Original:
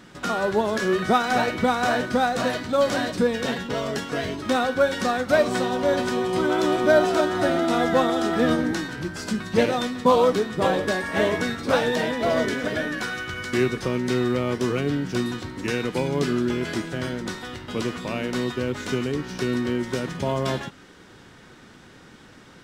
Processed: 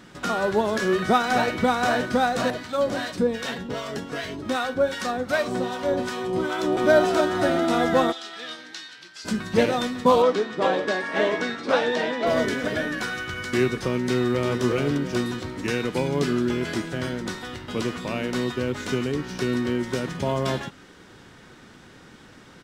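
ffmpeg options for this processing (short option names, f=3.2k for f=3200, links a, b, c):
-filter_complex "[0:a]asettb=1/sr,asplit=3[a][b][c];[a]atrim=end=2.504[d];[b]atrim=start=2.5:end=6.77,asetpts=PTS-STARTPTS,afade=t=in:d=0.004:c=qsin,afade=t=out:st=4.266:d=0.004:c=qsin,acrossover=split=800[e][f];[e]aeval=exprs='val(0)*(1-0.7/2+0.7/2*cos(2*PI*2.6*n/s))':c=same[g];[f]aeval=exprs='val(0)*(1-0.7/2-0.7/2*cos(2*PI*2.6*n/s))':c=same[h];[g][h]amix=inputs=2:normalize=0[i];[c]atrim=start=6.766[j];[d][i]acrossfade=d=0.004:c1=hsin:c2=qsin[k];[k][j]acrossfade=d=0.004:c1=qsin:c2=hsin,asplit=3[l][m][n];[l]afade=t=out:st=8.11:d=0.02[o];[m]bandpass=f=3.9k:t=q:w=1.4,afade=t=in:st=8.11:d=0.02,afade=t=out:st=9.24:d=0.02[p];[n]afade=t=in:st=9.24:d=0.02[q];[o][p][q]amix=inputs=3:normalize=0,asettb=1/sr,asplit=3[r][s][t];[r]atrim=end=10.224[u];[s]atrim=start=10.22:end=12.27,asetpts=PTS-STARTPTS,afade=t=in:d=0.004:c=qsin,afade=t=out:st=2.046:d=0.004:c=qsin,highpass=250,lowpass=5.5k[v];[t]atrim=start=12.266[w];[u][v]acrossfade=d=0.004:c1=hsin:c2=qsin[x];[x][w]acrossfade=d=0.004:c1=qsin:c2=hsin,asplit=2[y][z];[z]afade=t=in:st=13.99:d=0.01,afade=t=out:st=14.62:d=0.01,aecho=0:1:350|700|1050|1400|1750|2100:0.473151|0.236576|0.118288|0.0591439|0.029572|0.014786[aa];[y][aa]amix=inputs=2:normalize=0"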